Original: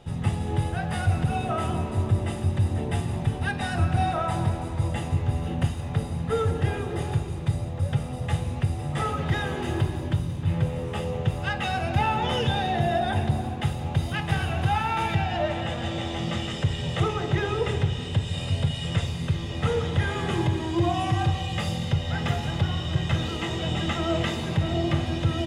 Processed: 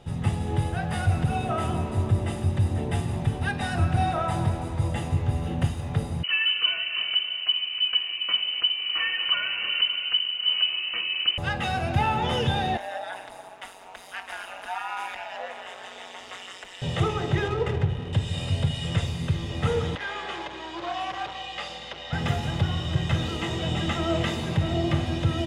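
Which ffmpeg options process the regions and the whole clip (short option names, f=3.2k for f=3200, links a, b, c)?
-filter_complex "[0:a]asettb=1/sr,asplit=3[a][b][c];[a]atrim=end=6.234[d];[b]atrim=start=6.23:end=11.38,asetpts=PTS-STARTPTS,afade=t=in:d=0.004:c=qsin,afade=t=out:st=5.146:d=0.004:c=qsin,aecho=1:1:605:0.158,atrim=end_sample=227115,lowpass=f=2.6k:t=q:w=0.5098,lowpass=f=2.6k:t=q:w=0.6013,lowpass=f=2.6k:t=q:w=0.9,lowpass=f=2.6k:t=q:w=2.563,afreqshift=-3100[e];[c]atrim=start=11.376[f];[d][e]acrossfade=d=0.004:c1=hsin:c2=qsin[g];[g][f]acrossfade=d=0.004:c1=qsin:c2=hsin,asettb=1/sr,asplit=3[h][i][j];[h]atrim=end=12.774[k];[i]atrim=start=12.77:end=16.82,asetpts=PTS-STARTPTS,afade=t=in:d=0.004:c=qsin,afade=t=out:st=4.046:d=0.004:c=qsin,highpass=890,aeval=exprs='val(0)*sin(2*PI*93*n/s)':c=same,equalizer=f=3.7k:w=1.6:g=-5.5[l];[j]atrim=start=16.816[m];[k][l]acrossfade=d=0.004:c1=hsin:c2=qsin[n];[n][m]acrossfade=d=0.004:c1=qsin:c2=hsin,asettb=1/sr,asplit=3[o][p][q];[o]atrim=end=17.484[r];[p]atrim=start=17.48:end=18.13,asetpts=PTS-STARTPTS,afade=t=in:d=0.004:c=qsin,afade=t=out:st=0.646:d=0.004:c=qsin,equalizer=f=270:w=5.5:g=-5,adynamicsmooth=sensitivity=3:basefreq=1.5k[s];[q]atrim=start=18.126[t];[r][s]acrossfade=d=0.004:c1=hsin:c2=qsin[u];[u][t]acrossfade=d=0.004:c1=qsin:c2=hsin,asettb=1/sr,asplit=3[v][w][x];[v]atrim=end=19.954[y];[w]atrim=start=19.95:end=22.13,asetpts=PTS-STARTPTS,afade=t=in:d=0.004:c=qsin,afade=t=out:st=2.176:d=0.004:c=qsin,volume=22dB,asoftclip=hard,volume=-22dB,highpass=630,lowpass=5k,aeval=exprs='val(0)+0.00224*(sin(2*PI*60*n/s)+sin(2*PI*2*60*n/s)/2+sin(2*PI*3*60*n/s)/3+sin(2*PI*4*60*n/s)/4+sin(2*PI*5*60*n/s)/5)':c=same[z];[x]atrim=start=22.126[aa];[y][z]acrossfade=d=0.004:c1=hsin:c2=qsin[ab];[ab][aa]acrossfade=d=0.004:c1=qsin:c2=hsin"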